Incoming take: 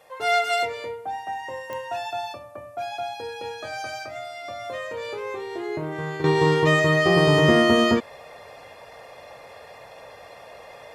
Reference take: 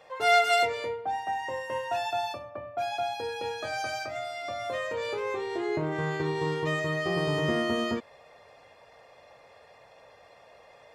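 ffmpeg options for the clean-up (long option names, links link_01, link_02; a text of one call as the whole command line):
ffmpeg -i in.wav -af "adeclick=threshold=4,agate=range=-21dB:threshold=-37dB,asetnsamples=nb_out_samples=441:pad=0,asendcmd='6.24 volume volume -10.5dB',volume=0dB" out.wav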